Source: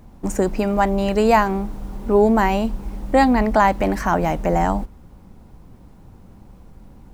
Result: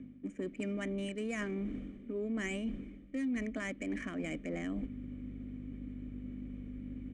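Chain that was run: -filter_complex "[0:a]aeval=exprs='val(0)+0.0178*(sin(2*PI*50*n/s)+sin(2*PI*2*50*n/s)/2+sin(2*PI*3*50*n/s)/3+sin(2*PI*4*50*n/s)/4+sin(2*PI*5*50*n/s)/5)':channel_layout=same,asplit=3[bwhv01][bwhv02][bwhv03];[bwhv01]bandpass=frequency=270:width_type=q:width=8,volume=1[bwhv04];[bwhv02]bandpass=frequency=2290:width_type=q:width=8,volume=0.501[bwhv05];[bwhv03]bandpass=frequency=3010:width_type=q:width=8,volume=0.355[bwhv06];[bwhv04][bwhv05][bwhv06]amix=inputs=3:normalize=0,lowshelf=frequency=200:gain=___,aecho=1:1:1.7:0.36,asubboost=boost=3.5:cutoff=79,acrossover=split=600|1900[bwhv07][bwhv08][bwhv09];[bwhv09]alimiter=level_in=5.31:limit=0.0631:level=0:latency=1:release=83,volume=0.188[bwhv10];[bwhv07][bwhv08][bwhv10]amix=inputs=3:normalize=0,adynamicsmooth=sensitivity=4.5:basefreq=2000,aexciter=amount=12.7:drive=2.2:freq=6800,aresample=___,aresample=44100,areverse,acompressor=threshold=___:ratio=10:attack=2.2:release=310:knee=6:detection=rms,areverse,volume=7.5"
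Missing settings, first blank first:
-8.5, 22050, 0.00316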